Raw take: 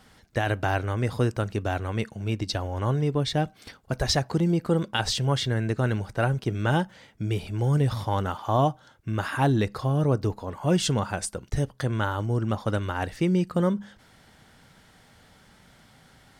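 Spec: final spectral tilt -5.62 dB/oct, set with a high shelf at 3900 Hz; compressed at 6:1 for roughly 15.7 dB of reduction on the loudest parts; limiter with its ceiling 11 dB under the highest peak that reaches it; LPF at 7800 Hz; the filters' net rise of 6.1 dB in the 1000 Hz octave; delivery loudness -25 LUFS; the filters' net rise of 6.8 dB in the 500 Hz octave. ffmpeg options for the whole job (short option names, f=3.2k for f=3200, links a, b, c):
-af "lowpass=7.8k,equalizer=f=500:t=o:g=7,equalizer=f=1k:t=o:g=5,highshelf=f=3.9k:g=5,acompressor=threshold=-31dB:ratio=6,volume=13dB,alimiter=limit=-14.5dB:level=0:latency=1"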